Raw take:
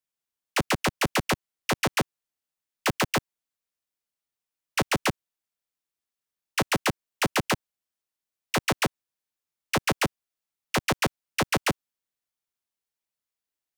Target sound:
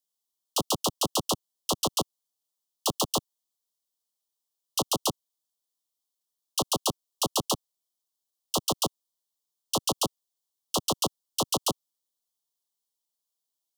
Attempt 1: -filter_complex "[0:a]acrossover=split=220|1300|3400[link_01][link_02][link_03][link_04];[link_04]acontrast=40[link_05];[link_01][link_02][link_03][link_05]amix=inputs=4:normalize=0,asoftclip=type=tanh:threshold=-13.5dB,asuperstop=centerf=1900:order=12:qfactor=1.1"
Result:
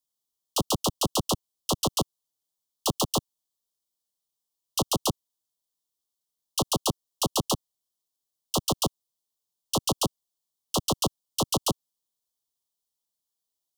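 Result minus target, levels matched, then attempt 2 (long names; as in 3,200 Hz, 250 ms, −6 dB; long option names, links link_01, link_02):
125 Hz band +5.5 dB
-filter_complex "[0:a]acrossover=split=220|1300|3400[link_01][link_02][link_03][link_04];[link_04]acontrast=40[link_05];[link_01][link_02][link_03][link_05]amix=inputs=4:normalize=0,asoftclip=type=tanh:threshold=-13.5dB,asuperstop=centerf=1900:order=12:qfactor=1.1,lowshelf=frequency=160:gain=-11"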